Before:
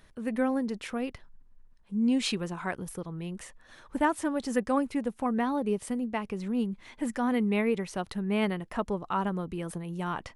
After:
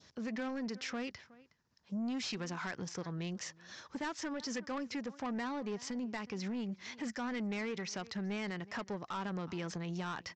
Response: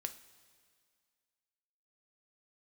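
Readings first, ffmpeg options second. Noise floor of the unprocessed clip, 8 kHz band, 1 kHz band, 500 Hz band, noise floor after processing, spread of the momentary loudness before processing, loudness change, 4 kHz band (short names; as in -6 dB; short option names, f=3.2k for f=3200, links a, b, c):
-57 dBFS, -3.0 dB, -10.0 dB, -11.0 dB, -67 dBFS, 10 LU, -9.0 dB, -4.0 dB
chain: -filter_complex "[0:a]acompressor=threshold=-35dB:ratio=2,aeval=exprs='0.0841*(cos(1*acos(clip(val(0)/0.0841,-1,1)))-cos(1*PI/2))+0.00335*(cos(7*acos(clip(val(0)/0.0841,-1,1)))-cos(7*PI/2))':c=same,adynamicequalizer=threshold=0.00178:dfrequency=1800:dqfactor=1.5:tfrequency=1800:tqfactor=1.5:attack=5:release=100:ratio=0.375:range=3.5:mode=boostabove:tftype=bell,highpass=f=81:w=0.5412,highpass=f=81:w=1.3066,equalizer=f=5.3k:t=o:w=0.84:g=15,asplit=2[a][b];[b]adelay=367.3,volume=-25dB,highshelf=f=4k:g=-8.27[c];[a][c]amix=inputs=2:normalize=0,aresample=16000,asoftclip=type=tanh:threshold=-30dB,aresample=44100,alimiter=level_in=10dB:limit=-24dB:level=0:latency=1:release=49,volume=-10dB,volume=1dB"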